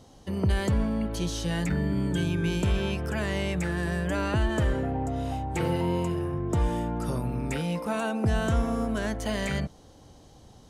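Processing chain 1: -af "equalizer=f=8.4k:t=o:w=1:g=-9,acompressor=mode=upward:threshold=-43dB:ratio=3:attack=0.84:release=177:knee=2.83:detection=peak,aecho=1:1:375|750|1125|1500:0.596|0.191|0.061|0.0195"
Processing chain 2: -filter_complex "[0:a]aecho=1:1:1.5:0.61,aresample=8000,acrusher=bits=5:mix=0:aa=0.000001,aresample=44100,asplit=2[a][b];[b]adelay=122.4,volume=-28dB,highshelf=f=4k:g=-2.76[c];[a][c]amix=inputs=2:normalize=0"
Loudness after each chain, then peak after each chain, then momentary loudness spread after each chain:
-27.0, -27.0 LUFS; -13.5, -12.5 dBFS; 4, 5 LU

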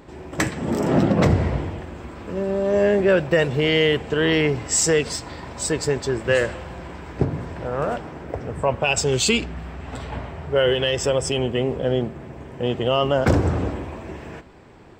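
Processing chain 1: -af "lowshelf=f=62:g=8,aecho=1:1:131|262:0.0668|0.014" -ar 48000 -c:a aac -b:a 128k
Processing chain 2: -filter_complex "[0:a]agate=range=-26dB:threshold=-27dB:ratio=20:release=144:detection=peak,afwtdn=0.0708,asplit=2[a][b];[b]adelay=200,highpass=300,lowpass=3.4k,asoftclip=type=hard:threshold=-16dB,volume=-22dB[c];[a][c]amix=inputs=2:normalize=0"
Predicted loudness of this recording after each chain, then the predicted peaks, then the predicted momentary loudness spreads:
-21.5, -22.0 LUFS; -5.0, -7.0 dBFS; 16, 11 LU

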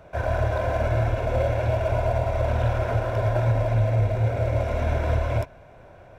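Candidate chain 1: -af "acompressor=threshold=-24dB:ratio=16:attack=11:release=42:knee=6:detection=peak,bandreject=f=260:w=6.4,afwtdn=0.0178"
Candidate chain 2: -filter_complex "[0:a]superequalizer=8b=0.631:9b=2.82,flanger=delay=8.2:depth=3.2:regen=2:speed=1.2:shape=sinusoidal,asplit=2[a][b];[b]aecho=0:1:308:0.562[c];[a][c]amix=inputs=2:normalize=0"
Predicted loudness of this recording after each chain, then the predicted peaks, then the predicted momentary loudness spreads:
-28.0, -25.5 LUFS; -16.0, -12.5 dBFS; 1, 5 LU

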